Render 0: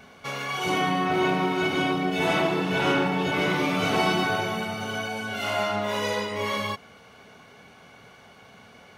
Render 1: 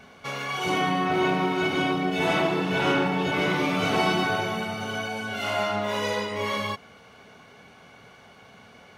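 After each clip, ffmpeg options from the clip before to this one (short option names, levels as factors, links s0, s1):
-af "highshelf=f=9300:g=-4"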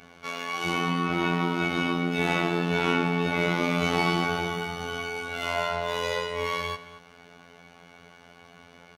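-filter_complex "[0:a]afftfilt=real='hypot(re,im)*cos(PI*b)':imag='0':win_size=2048:overlap=0.75,asplit=2[s0][s1];[s1]adelay=227.4,volume=0.178,highshelf=f=4000:g=-5.12[s2];[s0][s2]amix=inputs=2:normalize=0,volume=1.26"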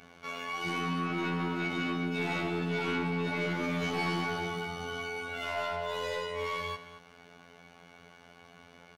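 -af "asoftclip=type=tanh:threshold=0.106,volume=0.668"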